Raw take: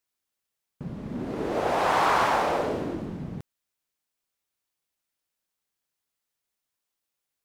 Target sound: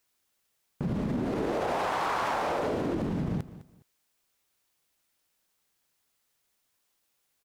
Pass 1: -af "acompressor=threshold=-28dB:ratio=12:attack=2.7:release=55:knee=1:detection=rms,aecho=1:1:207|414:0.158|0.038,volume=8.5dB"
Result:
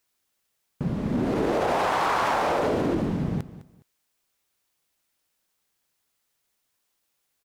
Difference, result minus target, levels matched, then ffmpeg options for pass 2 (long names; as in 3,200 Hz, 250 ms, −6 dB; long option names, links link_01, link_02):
downward compressor: peak gain reduction −5.5 dB
-af "acompressor=threshold=-34dB:ratio=12:attack=2.7:release=55:knee=1:detection=rms,aecho=1:1:207|414:0.158|0.038,volume=8.5dB"